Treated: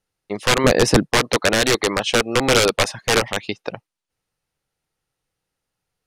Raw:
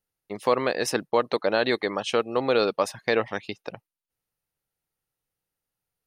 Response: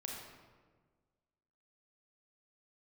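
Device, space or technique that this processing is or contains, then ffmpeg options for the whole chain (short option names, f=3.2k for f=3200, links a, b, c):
overflowing digital effects unit: -filter_complex "[0:a]aeval=exprs='(mod(6.31*val(0)+1,2)-1)/6.31':c=same,lowpass=8.5k,asettb=1/sr,asplit=3[a][b][c];[a]atrim=end=0.644[d];[b]atrim=start=0.64:end=1.07,asetpts=PTS-STARTPTS,afade=t=in:d=0.004:c=qsin,afade=t=out:st=0.426:d=0.004:c=qsin,lowshelf=f=430:g=11[e];[c]atrim=start=1.066[f];[d][e]acrossfade=d=0.004:c1=hsin:c2=qsin[g];[g][f]acrossfade=d=0.004:c1=qsin:c2=hsin,volume=8dB"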